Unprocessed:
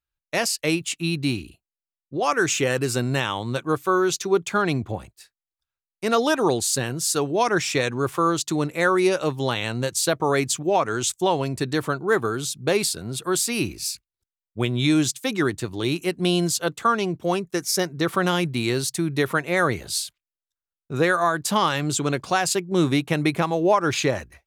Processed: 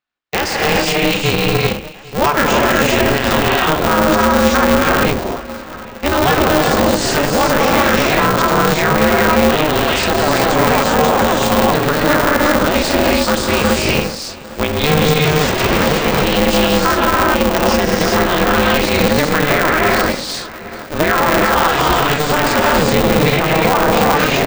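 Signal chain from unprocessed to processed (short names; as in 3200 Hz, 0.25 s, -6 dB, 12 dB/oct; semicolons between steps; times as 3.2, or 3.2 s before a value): 15.23–16 infinite clipping; BPF 180–3600 Hz; notches 50/100/150/200/250/300/350/400/450/500 Hz; feedback echo 0.801 s, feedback 58%, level -21.5 dB; non-linear reverb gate 0.42 s rising, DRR -3.5 dB; maximiser +13 dB; polarity switched at an audio rate 150 Hz; gain -3.5 dB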